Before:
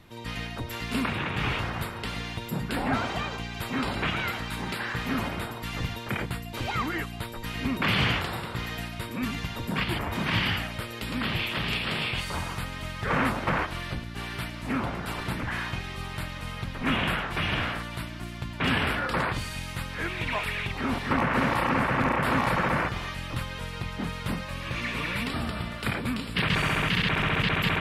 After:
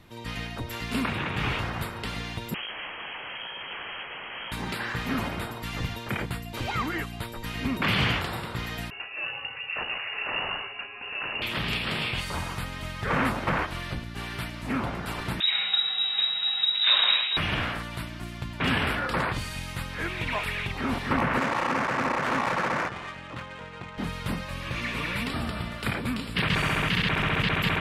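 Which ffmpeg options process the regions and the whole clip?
-filter_complex "[0:a]asettb=1/sr,asplit=3[a][b][c];[a]atrim=end=2.544[d];[b]atrim=start=2.54:end=4.52,asetpts=PTS-STARTPTS,afade=t=in:d=0.004:c=qsin,afade=t=out:st=1.976:d=0.004:c=qsin,aeval=exprs='(mod(28.2*val(0)+1,2)-1)/28.2':c=same,lowpass=f=2.8k:t=q:w=0.5098,lowpass=f=2.8k:t=q:w=0.6013,lowpass=f=2.8k:t=q:w=0.9,lowpass=f=2.8k:t=q:w=2.563,afreqshift=-3300[e];[c]atrim=start=4.516[f];[d][e]acrossfade=d=0.004:c1=hsin:c2=qsin[g];[g][f]acrossfade=d=0.004:c1=qsin:c2=hsin,asettb=1/sr,asplit=3[h][i][j];[h]atrim=end=8.904[k];[i]atrim=start=8.9:end=11.42,asetpts=PTS-STARTPTS,afade=t=in:d=0.004:c=qsin,afade=t=out:st=2.516:d=0.004:c=qsin,aeval=exprs='(tanh(14.1*val(0)+0.6)-tanh(0.6))/14.1':c=same,lowpass=f=2.5k:t=q:w=0.5098,lowpass=f=2.5k:t=q:w=0.6013,lowpass=f=2.5k:t=q:w=0.9,lowpass=f=2.5k:t=q:w=2.563,afreqshift=-2900[l];[j]atrim=start=11.416[m];[k][l]acrossfade=d=0.004:c1=hsin:c2=qsin[n];[n][m]acrossfade=d=0.004:c1=qsin:c2=hsin,asettb=1/sr,asplit=3[o][p][q];[o]atrim=end=15.404[r];[p]atrim=start=15.4:end=17.37,asetpts=PTS-STARTPTS,afade=t=in:d=0.004:c=qsin,afade=t=out:st=1.966:d=0.004:c=qsin,lowshelf=f=200:g=12,lowpass=f=3.3k:t=q:w=0.5098,lowpass=f=3.3k:t=q:w=0.6013,lowpass=f=3.3k:t=q:w=0.9,lowpass=f=3.3k:t=q:w=2.563,afreqshift=-3900[s];[q]atrim=start=17.366[t];[r][s]acrossfade=d=0.004:c1=hsin:c2=qsin[u];[u][t]acrossfade=d=0.004:c1=qsin:c2=hsin,asettb=1/sr,asplit=3[v][w][x];[v]atrim=end=21.384[y];[w]atrim=start=21.38:end=23.98,asetpts=PTS-STARTPTS,afade=t=in:d=0.004:c=qsin,afade=t=out:st=2.596:d=0.004:c=qsin,highpass=f=310:p=1,adynamicsmooth=sensitivity=4.5:basefreq=1.5k[z];[x]atrim=start=23.976[aa];[y][z]acrossfade=d=0.004:c1=hsin:c2=qsin[ab];[ab][aa]acrossfade=d=0.004:c1=qsin:c2=hsin"

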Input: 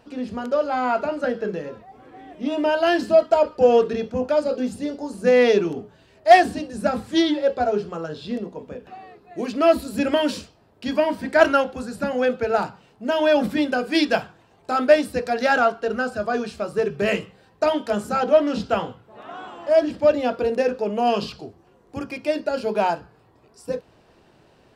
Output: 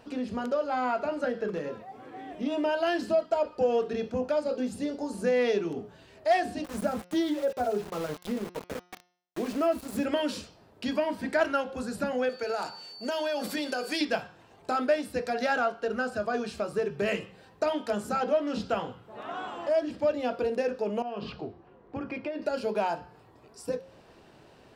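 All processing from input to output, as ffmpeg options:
-filter_complex "[0:a]asettb=1/sr,asplit=3[a][b][c];[a]atrim=end=1.484[d];[b]atrim=start=1.48:end=2.31,asetpts=PTS-STARTPTS,afade=t=in:d=0.004:c=qsin,afade=t=out:st=0.826:d=0.004:c=qsin,highpass=100,asoftclip=type=hard:threshold=-23.5dB[e];[c]atrim=start=2.306[f];[d][e]acrossfade=d=0.004:c1=hsin:c2=qsin[g];[g][f]acrossfade=d=0.004:c1=qsin:c2=hsin,asettb=1/sr,asplit=3[h][i][j];[h]atrim=end=6.644[k];[i]atrim=start=6.64:end=10.05,asetpts=PTS-STARTPTS,afade=t=in:d=0.004:c=qsin,afade=t=out:st=3.406:d=0.004:c=qsin,equalizer=f=3.4k:w=0.73:g=-6.5,aeval=exprs='val(0)*gte(abs(val(0)),0.02)':c=same[l];[j]atrim=start=10.046[m];[k][l]acrossfade=d=0.004:c1=hsin:c2=qsin[n];[n][m]acrossfade=d=0.004:c1=qsin:c2=hsin,asettb=1/sr,asplit=3[o][p][q];[o]atrim=end=12.294[r];[p]atrim=start=12.29:end=14.01,asetpts=PTS-STARTPTS,afade=t=in:d=0.004:c=qsin,afade=t=out:st=1.716:d=0.004:c=qsin,bass=f=250:g=-13,treble=f=4k:g=9,acompressor=threshold=-24dB:ratio=3:attack=3.2:release=140:knee=1:detection=peak,aeval=exprs='val(0)+0.00631*sin(2*PI*4500*n/s)':c=same[s];[q]atrim=start=14.006[t];[r][s]acrossfade=d=0.004:c1=hsin:c2=qsin[u];[u][t]acrossfade=d=0.004:c1=qsin:c2=hsin,asettb=1/sr,asplit=3[v][w][x];[v]atrim=end=21.024[y];[w]atrim=start=21.02:end=22.42,asetpts=PTS-STARTPTS,afade=t=in:d=0.004:c=qsin,afade=t=out:st=1.396:d=0.004:c=qsin,lowpass=2.4k,acompressor=threshold=-29dB:ratio=6:attack=3.2:release=140:knee=1:detection=peak[z];[x]atrim=start=22.416[aa];[y][z]acrossfade=d=0.004:c1=hsin:c2=qsin[ab];[ab][aa]acrossfade=d=0.004:c1=qsin:c2=hsin,acompressor=threshold=-32dB:ratio=2,lowshelf=f=140:g=-3,bandreject=f=178.6:t=h:w=4,bandreject=f=357.2:t=h:w=4,bandreject=f=535.8:t=h:w=4,bandreject=f=714.4:t=h:w=4,bandreject=f=893:t=h:w=4,bandreject=f=1.0716k:t=h:w=4,bandreject=f=1.2502k:t=h:w=4,bandreject=f=1.4288k:t=h:w=4,bandreject=f=1.6074k:t=h:w=4,bandreject=f=1.786k:t=h:w=4,bandreject=f=1.9646k:t=h:w=4,bandreject=f=2.1432k:t=h:w=4,bandreject=f=2.3218k:t=h:w=4,bandreject=f=2.5004k:t=h:w=4,bandreject=f=2.679k:t=h:w=4,bandreject=f=2.8576k:t=h:w=4,bandreject=f=3.0362k:t=h:w=4,bandreject=f=3.2148k:t=h:w=4,bandreject=f=3.3934k:t=h:w=4,bandreject=f=3.572k:t=h:w=4,bandreject=f=3.7506k:t=h:w=4,bandreject=f=3.9292k:t=h:w=4,bandreject=f=4.1078k:t=h:w=4,bandreject=f=4.2864k:t=h:w=4,bandreject=f=4.465k:t=h:w=4,bandreject=f=4.6436k:t=h:w=4,bandreject=f=4.8222k:t=h:w=4,bandreject=f=5.0008k:t=h:w=4,bandreject=f=5.1794k:t=h:w=4,bandreject=f=5.358k:t=h:w=4,bandreject=f=5.5366k:t=h:w=4,bandreject=f=5.7152k:t=h:w=4,bandreject=f=5.8938k:t=h:w=4,bandreject=f=6.0724k:t=h:w=4,volume=1dB"

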